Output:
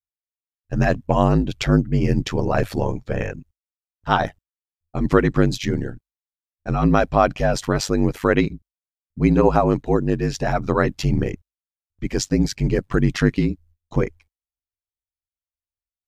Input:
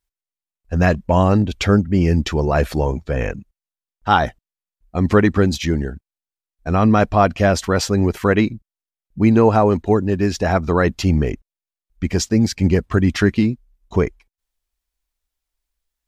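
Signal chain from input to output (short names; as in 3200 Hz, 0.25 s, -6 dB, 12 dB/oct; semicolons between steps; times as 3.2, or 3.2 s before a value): ring modulator 49 Hz; gate with hold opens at -50 dBFS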